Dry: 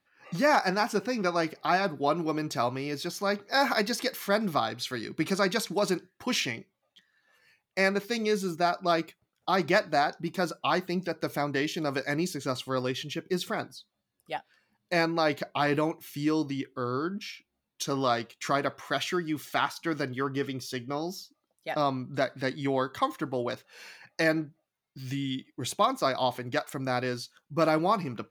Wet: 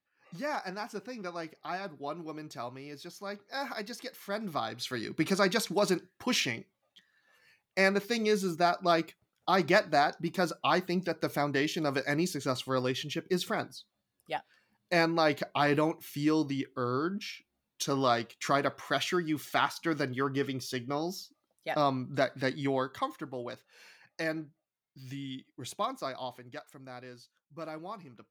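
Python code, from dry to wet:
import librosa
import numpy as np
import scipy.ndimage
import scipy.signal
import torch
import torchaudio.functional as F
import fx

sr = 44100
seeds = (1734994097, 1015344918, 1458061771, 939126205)

y = fx.gain(x, sr, db=fx.line((4.17, -11.5), (5.02, -0.5), (22.56, -0.5), (23.27, -8.0), (25.86, -8.0), (26.8, -16.5)))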